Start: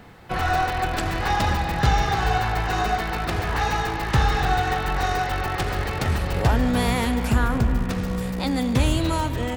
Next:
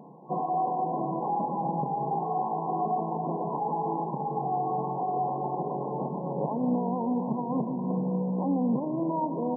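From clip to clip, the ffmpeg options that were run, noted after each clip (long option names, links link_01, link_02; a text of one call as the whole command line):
ffmpeg -i in.wav -af "alimiter=limit=-18dB:level=0:latency=1:release=15,afftfilt=real='re*between(b*sr/4096,130,1100)':imag='im*between(b*sr/4096,130,1100)':win_size=4096:overlap=0.75" out.wav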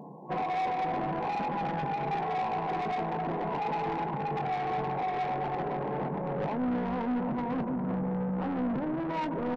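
ffmpeg -i in.wav -filter_complex "[0:a]asoftclip=type=tanh:threshold=-31.5dB,asplit=2[link_01][link_02];[link_02]adelay=20,volume=-12dB[link_03];[link_01][link_03]amix=inputs=2:normalize=0,volume=3dB" out.wav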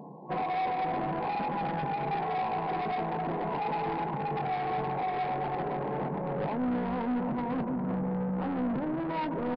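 ffmpeg -i in.wav -af "aresample=11025,aresample=44100" out.wav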